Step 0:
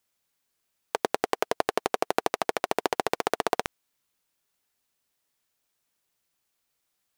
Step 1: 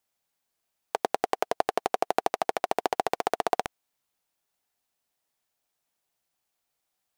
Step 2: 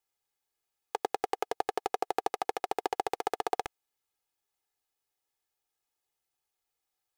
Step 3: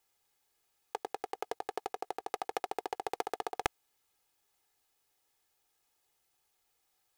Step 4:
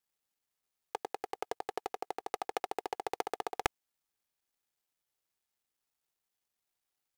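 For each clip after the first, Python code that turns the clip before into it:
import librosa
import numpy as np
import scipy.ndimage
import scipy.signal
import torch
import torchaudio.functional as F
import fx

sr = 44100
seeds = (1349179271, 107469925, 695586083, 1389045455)

y1 = fx.peak_eq(x, sr, hz=740.0, db=7.0, octaves=0.57)
y1 = F.gain(torch.from_numpy(y1), -3.5).numpy()
y2 = y1 + 0.65 * np.pad(y1, (int(2.4 * sr / 1000.0), 0))[:len(y1)]
y2 = F.gain(torch.from_numpy(y2), -6.5).numpy()
y3 = fx.over_compress(y2, sr, threshold_db=-37.0, ratio=-1.0)
y3 = F.gain(torch.from_numpy(y3), 1.5).numpy()
y4 = fx.law_mismatch(y3, sr, coded='A')
y4 = F.gain(torch.from_numpy(y4), 1.0).numpy()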